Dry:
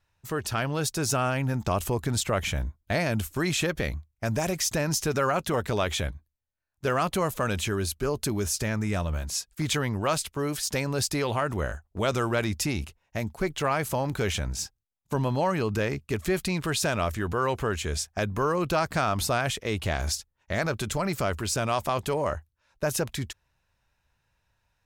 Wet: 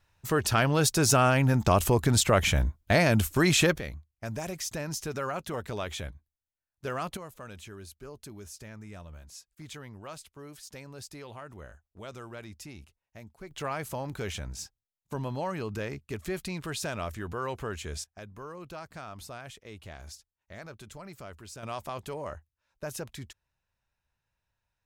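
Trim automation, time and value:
+4 dB
from 3.78 s -8 dB
from 7.17 s -17 dB
from 13.51 s -7.5 dB
from 18.04 s -17 dB
from 21.63 s -10 dB

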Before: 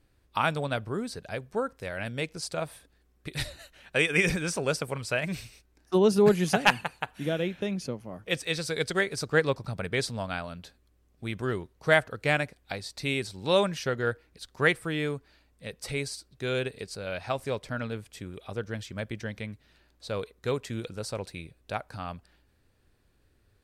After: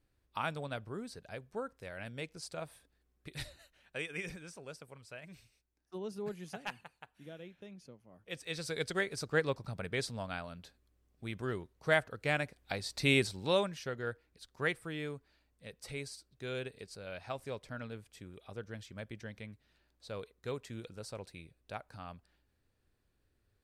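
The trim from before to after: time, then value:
3.39 s -10 dB
4.57 s -20 dB
8.04 s -20 dB
8.66 s -7 dB
12.32 s -7 dB
13.18 s +2.5 dB
13.70 s -10 dB

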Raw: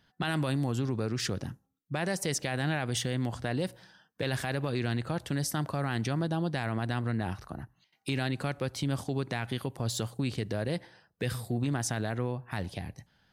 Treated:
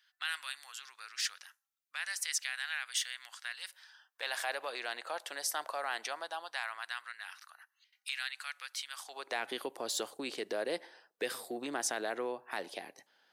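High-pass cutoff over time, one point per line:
high-pass 24 dB/octave
3.65 s 1.4 kHz
4.48 s 590 Hz
6.01 s 590 Hz
7.14 s 1.4 kHz
8.91 s 1.4 kHz
9.41 s 350 Hz

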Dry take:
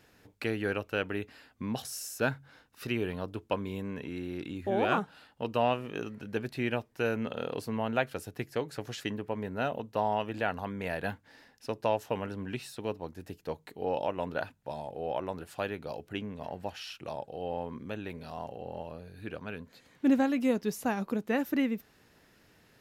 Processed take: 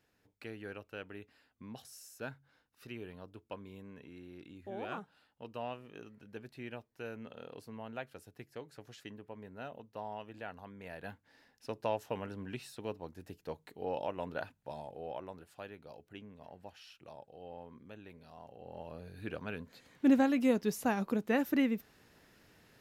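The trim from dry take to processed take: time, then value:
10.78 s -13.5 dB
11.72 s -5.5 dB
14.80 s -5.5 dB
15.55 s -13 dB
18.44 s -13 dB
19.06 s -1 dB

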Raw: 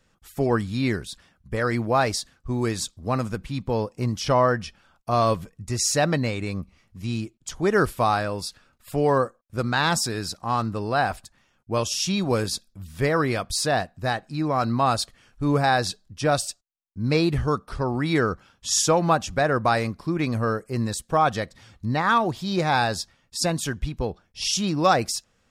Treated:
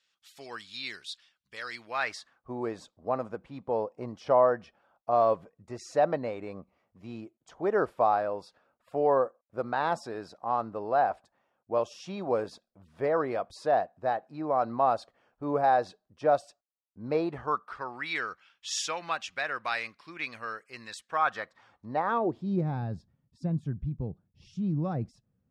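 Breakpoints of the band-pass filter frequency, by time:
band-pass filter, Q 1.6
1.79 s 3.7 kHz
2.51 s 650 Hz
17.21 s 650 Hz
18.13 s 2.5 kHz
20.87 s 2.5 kHz
22.02 s 630 Hz
22.81 s 140 Hz

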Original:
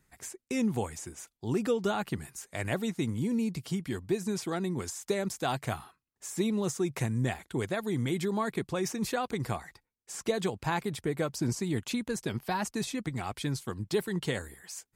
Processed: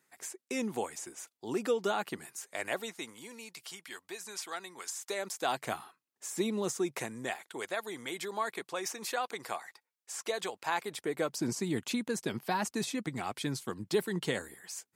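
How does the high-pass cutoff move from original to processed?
2.41 s 330 Hz
3.35 s 950 Hz
4.87 s 950 Hz
5.71 s 260 Hz
6.74 s 260 Hz
7.50 s 580 Hz
10.67 s 580 Hz
11.60 s 180 Hz

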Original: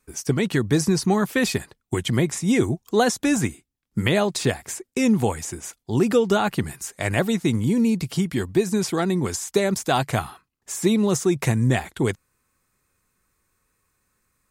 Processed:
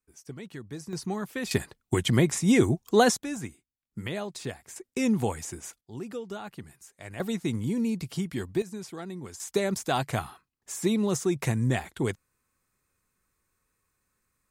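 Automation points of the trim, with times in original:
-19.5 dB
from 0.93 s -12 dB
from 1.51 s -1 dB
from 3.17 s -13.5 dB
from 4.76 s -6 dB
from 5.81 s -18 dB
from 7.20 s -8 dB
from 8.62 s -16 dB
from 9.40 s -6 dB

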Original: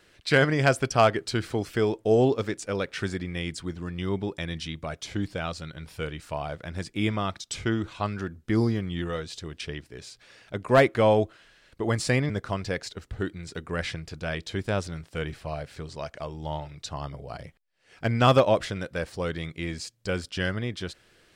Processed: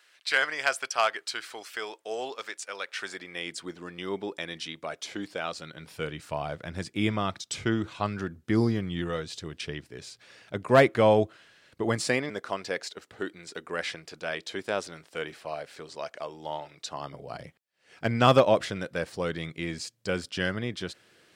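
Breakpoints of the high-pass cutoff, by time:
2.79 s 1 kHz
3.61 s 330 Hz
5.42 s 330 Hz
6.32 s 99 Hz
11.81 s 99 Hz
12.23 s 340 Hz
16.82 s 340 Hz
17.39 s 130 Hz

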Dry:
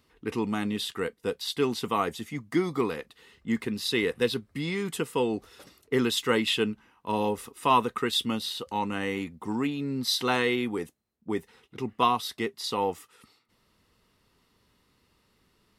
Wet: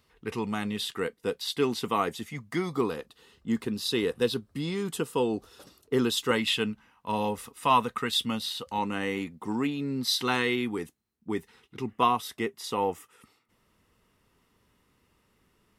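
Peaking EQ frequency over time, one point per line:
peaking EQ -8.5 dB 0.51 oct
290 Hz
from 0.82 s 67 Hz
from 2.23 s 300 Hz
from 2.75 s 2.1 kHz
from 6.31 s 360 Hz
from 8.78 s 72 Hz
from 10.07 s 580 Hz
from 11.91 s 4.3 kHz

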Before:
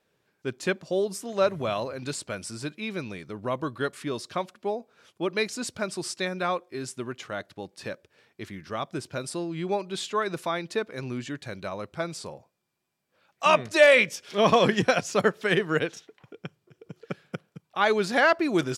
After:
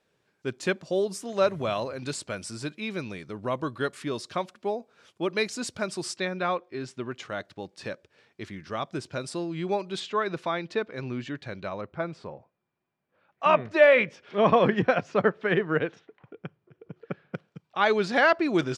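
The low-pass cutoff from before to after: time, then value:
9.9 kHz
from 6.17 s 4.1 kHz
from 7.12 s 7.6 kHz
from 10.00 s 4.1 kHz
from 11.81 s 2.1 kHz
from 17.35 s 5.2 kHz

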